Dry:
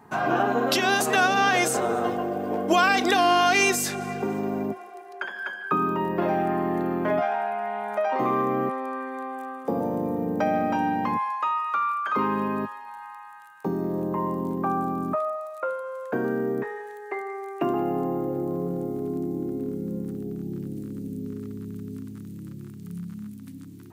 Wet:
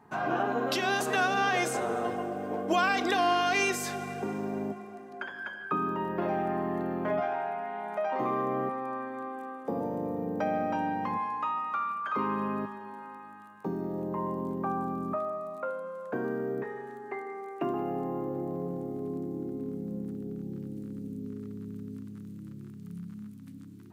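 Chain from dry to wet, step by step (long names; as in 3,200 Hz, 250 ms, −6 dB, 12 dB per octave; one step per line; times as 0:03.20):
high-shelf EQ 6,400 Hz −6 dB
dense smooth reverb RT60 4.1 s, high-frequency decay 0.6×, DRR 13 dB
level −6 dB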